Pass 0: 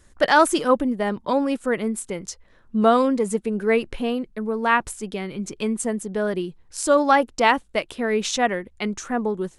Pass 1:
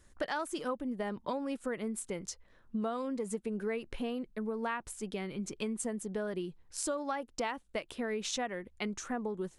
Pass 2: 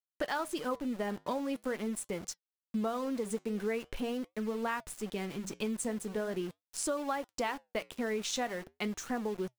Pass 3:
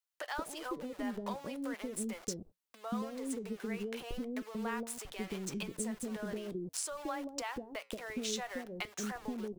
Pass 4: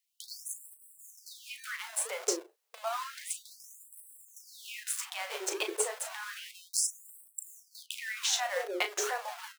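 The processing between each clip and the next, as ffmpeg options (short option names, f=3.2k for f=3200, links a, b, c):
-af "acompressor=threshold=-24dB:ratio=12,volume=-7.5dB"
-af "aeval=exprs='val(0)*gte(abs(val(0)),0.00562)':c=same,flanger=delay=2.6:depth=7.3:regen=-81:speed=0.43:shape=triangular,volume=5.5dB"
-filter_complex "[0:a]acompressor=threshold=-39dB:ratio=5,acrossover=split=530[a][b];[a]adelay=180[c];[c][b]amix=inputs=2:normalize=0,volume=4dB"
-filter_complex "[0:a]asplit=2[a][b];[b]acrusher=samples=30:mix=1:aa=0.000001:lfo=1:lforange=18:lforate=1.7,volume=-10dB[c];[a][c]amix=inputs=2:normalize=0,asplit=2[d][e];[e]adelay=36,volume=-9dB[f];[d][f]amix=inputs=2:normalize=0,afftfilt=real='re*gte(b*sr/1024,330*pow(7800/330,0.5+0.5*sin(2*PI*0.31*pts/sr)))':imag='im*gte(b*sr/1024,330*pow(7800/330,0.5+0.5*sin(2*PI*0.31*pts/sr)))':win_size=1024:overlap=0.75,volume=8.5dB"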